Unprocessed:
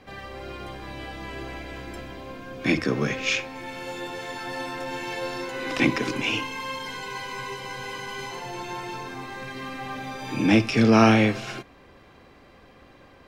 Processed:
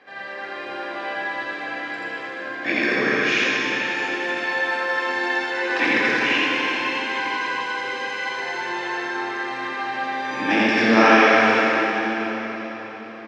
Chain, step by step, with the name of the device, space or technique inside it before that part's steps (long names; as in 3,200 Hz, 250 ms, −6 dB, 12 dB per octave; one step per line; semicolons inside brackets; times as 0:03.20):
station announcement (band-pass filter 390–4,600 Hz; parametric band 1,700 Hz +10.5 dB 0.28 octaves; loudspeakers that aren't time-aligned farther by 29 metres 0 dB, 64 metres −12 dB; convolution reverb RT60 4.5 s, pre-delay 19 ms, DRR −3.5 dB)
level −1 dB